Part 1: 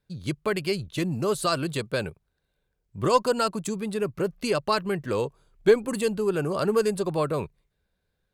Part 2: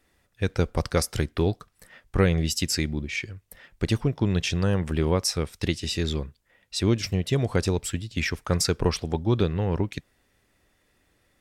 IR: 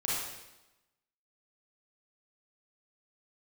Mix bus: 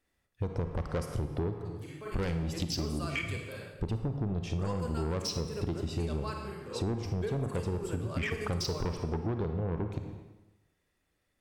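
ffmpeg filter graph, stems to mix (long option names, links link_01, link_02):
-filter_complex "[0:a]equalizer=frequency=4100:width_type=o:width=0.2:gain=-6,adelay=1550,volume=-14dB,asplit=2[link_01][link_02];[link_02]volume=-7dB[link_03];[1:a]afwtdn=0.0316,asoftclip=type=tanh:threshold=-23dB,volume=2dB,asplit=3[link_04][link_05][link_06];[link_05]volume=-10.5dB[link_07];[link_06]apad=whole_len=436018[link_08];[link_01][link_08]sidechaingate=range=-33dB:threshold=-49dB:ratio=16:detection=peak[link_09];[2:a]atrim=start_sample=2205[link_10];[link_03][link_07]amix=inputs=2:normalize=0[link_11];[link_11][link_10]afir=irnorm=-1:irlink=0[link_12];[link_09][link_04][link_12]amix=inputs=3:normalize=0,acompressor=threshold=-30dB:ratio=6"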